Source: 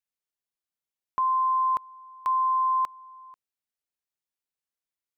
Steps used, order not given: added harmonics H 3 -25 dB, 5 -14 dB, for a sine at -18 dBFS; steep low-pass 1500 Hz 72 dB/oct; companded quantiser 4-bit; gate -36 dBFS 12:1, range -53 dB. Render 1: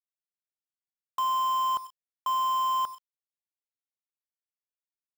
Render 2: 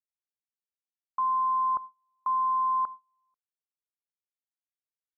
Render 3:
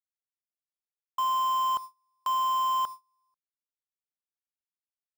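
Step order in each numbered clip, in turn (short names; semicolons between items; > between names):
added harmonics > gate > steep low-pass > companded quantiser; added harmonics > companded quantiser > gate > steep low-pass; added harmonics > steep low-pass > companded quantiser > gate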